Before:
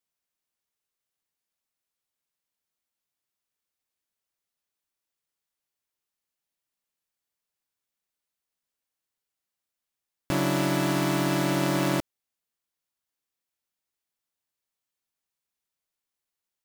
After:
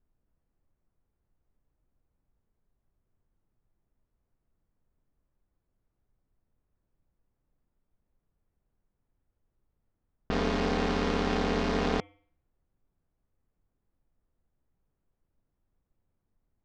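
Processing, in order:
low-pass filter 5,400 Hz 24 dB per octave
hum removal 201.5 Hz, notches 17
ring modulation 110 Hz
background noise brown −75 dBFS
low-pass that shuts in the quiet parts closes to 1,700 Hz, open at −26.5 dBFS

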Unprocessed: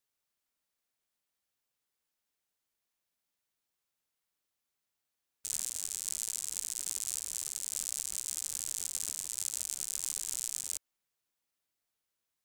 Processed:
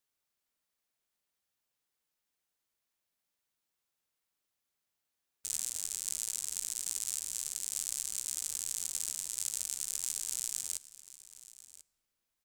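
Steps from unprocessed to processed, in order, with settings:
single-tap delay 1,040 ms −17.5 dB
on a send at −18.5 dB: convolution reverb RT60 3.2 s, pre-delay 5 ms

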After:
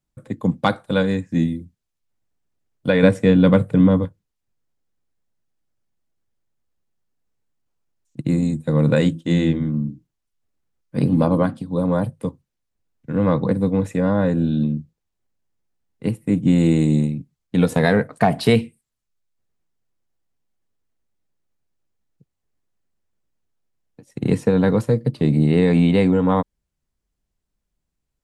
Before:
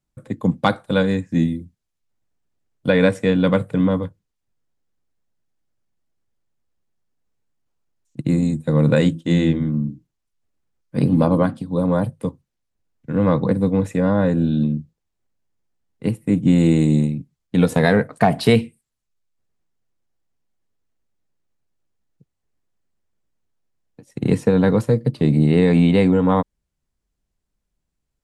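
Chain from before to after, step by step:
0:03.03–0:04.05: low-shelf EQ 420 Hz +6.5 dB
level −1 dB

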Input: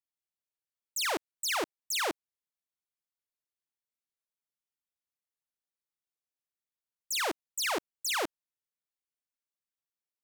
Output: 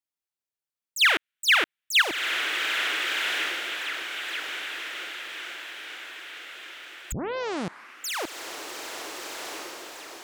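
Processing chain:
0:00.99–0:02.02: flat-topped bell 2,200 Hz +15 dB
feedback delay with all-pass diffusion 1,370 ms, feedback 52%, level −3.5 dB
0:07.12: tape start 1.02 s

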